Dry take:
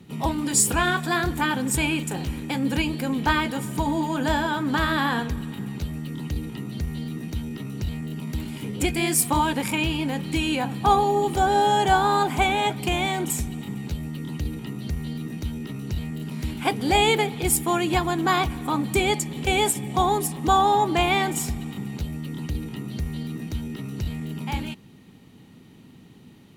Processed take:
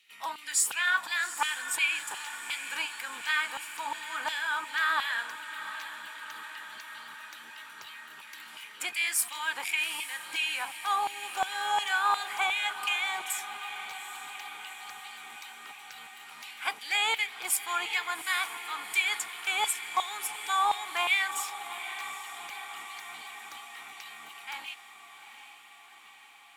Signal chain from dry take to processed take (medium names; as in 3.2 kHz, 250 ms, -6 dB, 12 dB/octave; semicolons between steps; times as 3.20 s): LFO high-pass saw down 2.8 Hz 980–2700 Hz; echo that smears into a reverb 810 ms, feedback 67%, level -11.5 dB; trim -6.5 dB